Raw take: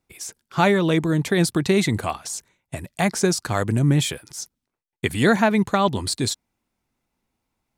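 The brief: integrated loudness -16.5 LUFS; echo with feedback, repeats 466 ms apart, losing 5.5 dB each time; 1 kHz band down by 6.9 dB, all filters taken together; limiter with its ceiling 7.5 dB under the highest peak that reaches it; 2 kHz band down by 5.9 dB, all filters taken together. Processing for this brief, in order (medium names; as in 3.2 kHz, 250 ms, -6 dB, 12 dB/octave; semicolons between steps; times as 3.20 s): peaking EQ 1 kHz -8.5 dB; peaking EQ 2 kHz -4.5 dB; peak limiter -15.5 dBFS; feedback delay 466 ms, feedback 53%, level -5.5 dB; trim +8.5 dB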